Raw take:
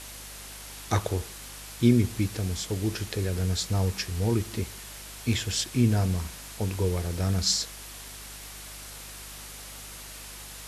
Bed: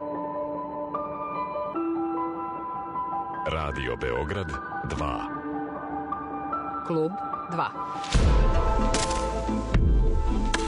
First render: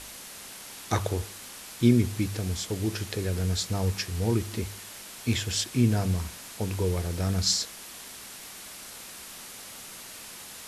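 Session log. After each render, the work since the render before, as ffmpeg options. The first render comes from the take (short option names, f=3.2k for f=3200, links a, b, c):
-af "bandreject=f=50:t=h:w=4,bandreject=f=100:t=h:w=4,bandreject=f=150:t=h:w=4"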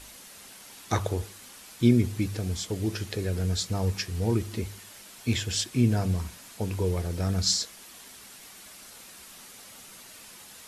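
-af "afftdn=nr=6:nf=-44"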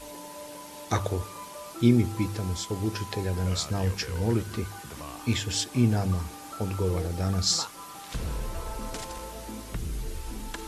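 -filter_complex "[1:a]volume=-12dB[a];[0:a][a]amix=inputs=2:normalize=0"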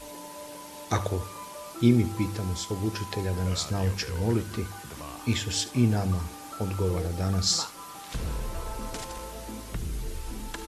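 -af "aecho=1:1:72:0.133"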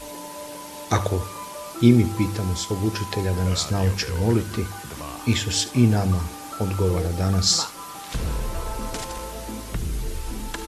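-af "volume=5.5dB"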